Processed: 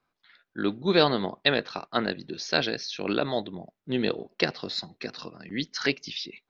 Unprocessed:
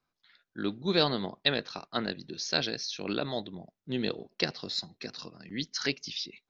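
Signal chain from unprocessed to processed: tone controls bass -4 dB, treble -10 dB; trim +6.5 dB

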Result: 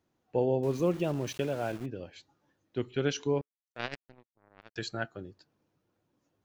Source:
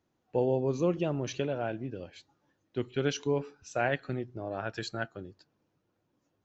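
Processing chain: 0.63–1.86 s: small samples zeroed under -43.5 dBFS; 3.41–4.76 s: power-law waveshaper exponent 3

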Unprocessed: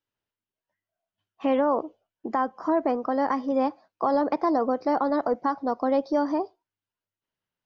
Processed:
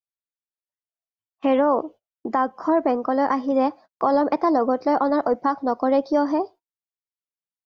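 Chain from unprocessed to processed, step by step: gate -45 dBFS, range -25 dB; trim +4 dB

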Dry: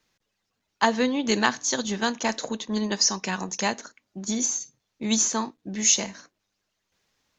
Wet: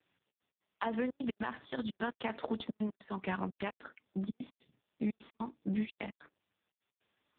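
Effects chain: high-pass 94 Hz 24 dB/octave, from 1.21 s 42 Hz; peak limiter -15 dBFS, peak gain reduction 9.5 dB; compression 16:1, threshold -30 dBFS, peak gain reduction 11 dB; trance gate "xxx.x.xx" 150 bpm -60 dB; trim +1 dB; AMR-NB 4.75 kbps 8 kHz

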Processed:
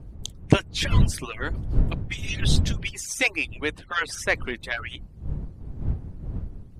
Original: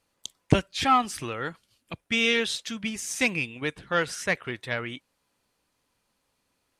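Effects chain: harmonic-percussive separation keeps percussive; wind noise 97 Hz -30 dBFS; trim +3 dB

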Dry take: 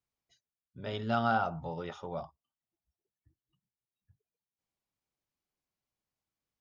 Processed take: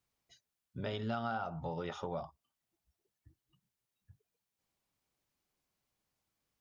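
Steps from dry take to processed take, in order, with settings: compression 4:1, threshold -42 dBFS, peak gain reduction 15.5 dB; trim +6 dB

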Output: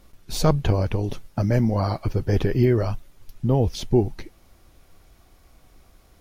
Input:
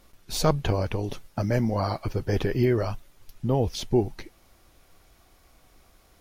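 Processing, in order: bass shelf 340 Hz +6 dB

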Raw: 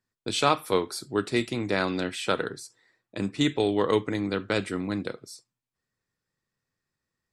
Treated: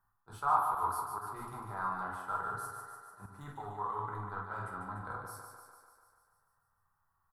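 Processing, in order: simulated room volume 170 m³, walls furnished, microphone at 1.2 m; in parallel at -4.5 dB: hard clipper -18.5 dBFS, distortion -11 dB; on the sum: treble shelf 7 kHz +4 dB; doubling 48 ms -8.5 dB; reverse; compression 12:1, threshold -32 dBFS, peak gain reduction 20 dB; reverse; slow attack 101 ms; gain riding 2 s; FFT filter 100 Hz 0 dB, 220 Hz -17 dB, 550 Hz -15 dB, 840 Hz +8 dB, 1.3 kHz +8 dB, 2.4 kHz -26 dB, 7.6 kHz -21 dB, 11 kHz -4 dB; thinning echo 147 ms, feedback 64%, high-pass 200 Hz, level -6 dB

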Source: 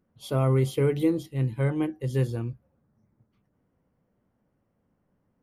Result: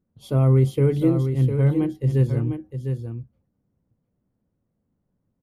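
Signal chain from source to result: bass shelf 430 Hz +11.5 dB; gate -49 dBFS, range -8 dB; delay 704 ms -7.5 dB; trim -3.5 dB

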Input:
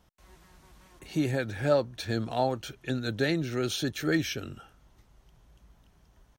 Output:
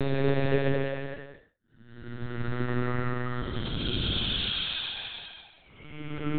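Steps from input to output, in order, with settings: random holes in the spectrogram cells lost 23%; dynamic bell 380 Hz, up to -6 dB, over -46 dBFS, Q 3.9; trance gate "x.x...x.xx.." 180 bpm -60 dB; waveshaping leveller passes 3; Paulstretch 7.6×, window 0.25 s, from 3.17 s; LPC vocoder at 8 kHz pitch kept; distance through air 130 m

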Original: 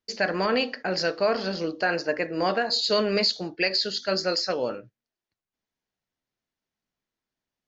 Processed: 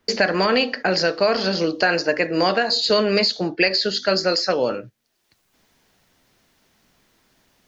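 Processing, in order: three bands compressed up and down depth 70%; trim +5.5 dB

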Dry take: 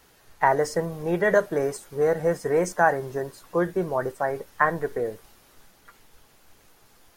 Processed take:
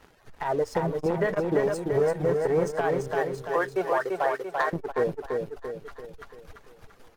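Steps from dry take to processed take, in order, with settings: low-pass 1.9 kHz 6 dB/octave; reverb removal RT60 1.2 s; 3.13–4.73 s: high-pass 780 Hz 12 dB/octave; compression 6:1, threshold -32 dBFS, peak gain reduction 16 dB; waveshaping leveller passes 2; peak limiter -22.5 dBFS, peak gain reduction 6 dB; on a send: feedback delay 340 ms, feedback 47%, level -4 dB; on the sum: transformer saturation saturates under 330 Hz; trim +5.5 dB

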